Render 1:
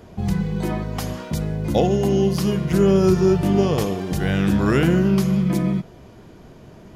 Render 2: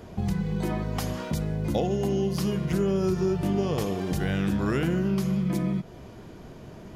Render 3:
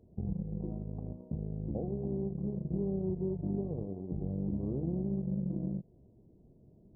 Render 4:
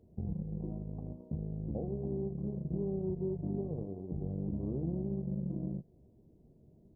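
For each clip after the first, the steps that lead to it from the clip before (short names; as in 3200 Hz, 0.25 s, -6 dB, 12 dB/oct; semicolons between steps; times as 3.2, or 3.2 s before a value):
compressor 2.5:1, threshold -26 dBFS, peak gain reduction 10 dB
added harmonics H 7 -21 dB, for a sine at -14 dBFS; Gaussian blur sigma 16 samples; gain -6.5 dB
doubler 13 ms -13 dB; gain -1.5 dB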